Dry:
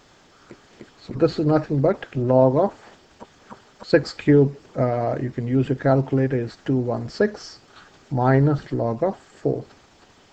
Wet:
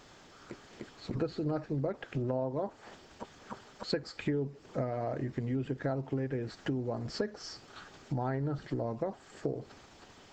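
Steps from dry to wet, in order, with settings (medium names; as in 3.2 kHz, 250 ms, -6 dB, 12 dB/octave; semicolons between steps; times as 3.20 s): compression 5:1, threshold -29 dBFS, peak gain reduction 17 dB; trim -2.5 dB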